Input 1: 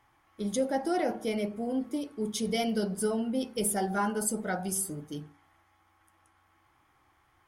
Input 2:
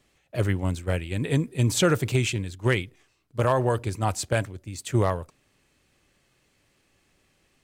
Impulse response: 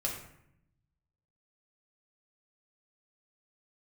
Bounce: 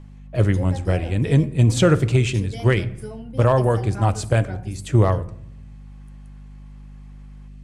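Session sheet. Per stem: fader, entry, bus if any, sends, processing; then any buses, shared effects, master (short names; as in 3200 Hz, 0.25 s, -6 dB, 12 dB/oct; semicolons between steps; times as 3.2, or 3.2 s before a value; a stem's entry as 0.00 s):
+2.5 dB, 0.00 s, no send, notch 1300 Hz; de-esser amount 65%; auto duck -9 dB, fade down 0.35 s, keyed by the second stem
+1.5 dB, 0.00 s, send -14.5 dB, tilt -1.5 dB/oct; hum 50 Hz, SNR 19 dB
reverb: on, RT60 0.75 s, pre-delay 6 ms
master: LPF 11000 Hz 24 dB/oct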